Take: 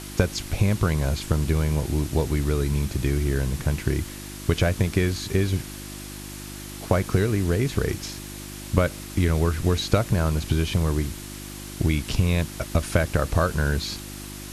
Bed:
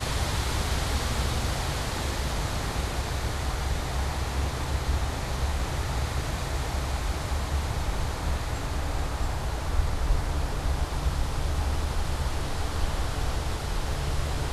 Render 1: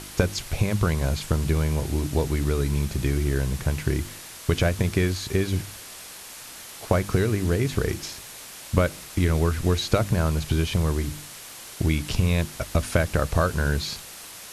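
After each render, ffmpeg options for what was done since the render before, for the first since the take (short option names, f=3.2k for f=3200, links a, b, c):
-af "bandreject=f=50:t=h:w=4,bandreject=f=100:t=h:w=4,bandreject=f=150:t=h:w=4,bandreject=f=200:t=h:w=4,bandreject=f=250:t=h:w=4,bandreject=f=300:t=h:w=4,bandreject=f=350:t=h:w=4"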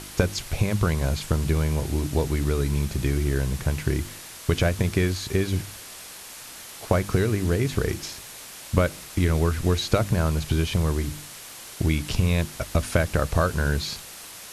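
-af anull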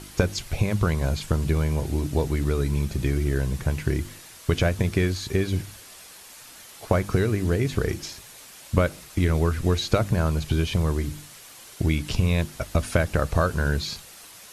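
-af "afftdn=nr=6:nf=-42"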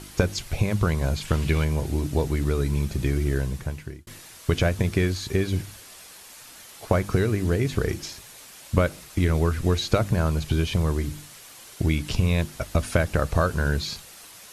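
-filter_complex "[0:a]asettb=1/sr,asplit=3[a][b][c];[a]atrim=end=1.254[d];[b]atrim=start=1.25:end=1.65,asetpts=PTS-STARTPTS,afade=t=in:d=0.004:c=qsin,afade=t=out:st=0.396:d=0.004:c=qsin,equalizer=f=2.6k:w=0.96:g=9.5[e];[c]atrim=start=1.646[f];[d][e]acrossfade=d=0.004:c1=hsin:c2=qsin[g];[g][f]acrossfade=d=0.004:c1=qsin:c2=hsin,asplit=2[h][i];[h]atrim=end=4.07,asetpts=PTS-STARTPTS,afade=t=out:st=3.34:d=0.73[j];[i]atrim=start=4.07,asetpts=PTS-STARTPTS,afade=t=in:d=0.004:c=hsin[k];[j][k]concat=n=2:v=0:a=1"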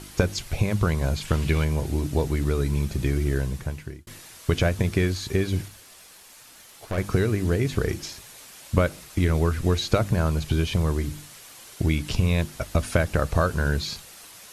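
-filter_complex "[0:a]asettb=1/sr,asplit=3[a][b][c];[a]atrim=end=5.684[d];[b]atrim=start=5.68:end=6.98,asetpts=PTS-STARTPTS,afade=t=in:d=0.004:c=qsin,afade=t=out:st=1.296:d=0.004:c=qsin,aeval=exprs='(tanh(15.8*val(0)+0.65)-tanh(0.65))/15.8':c=same[e];[c]atrim=start=6.976[f];[d][e]acrossfade=d=0.004:c1=hsin:c2=qsin[g];[g][f]acrossfade=d=0.004:c1=qsin:c2=hsin"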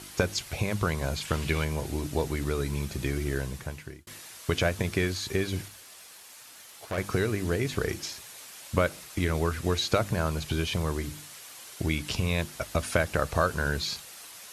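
-af "highpass=50,lowshelf=f=360:g=-7.5"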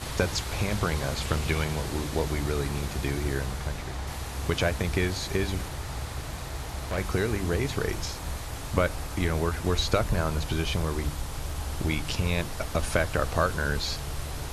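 -filter_complex "[1:a]volume=-6dB[a];[0:a][a]amix=inputs=2:normalize=0"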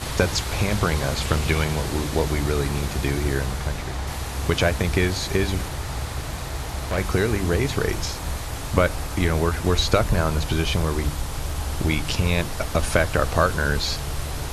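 -af "volume=5.5dB"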